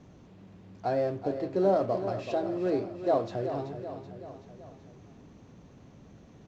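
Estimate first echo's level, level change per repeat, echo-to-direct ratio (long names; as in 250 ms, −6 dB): −10.0 dB, −5.0 dB, −8.5 dB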